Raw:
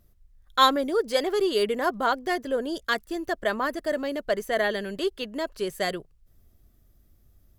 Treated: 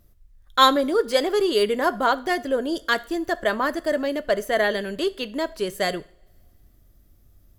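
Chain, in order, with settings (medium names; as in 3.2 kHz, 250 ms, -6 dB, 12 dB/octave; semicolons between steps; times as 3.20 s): two-slope reverb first 0.45 s, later 2.3 s, from -26 dB, DRR 14 dB; trim +3.5 dB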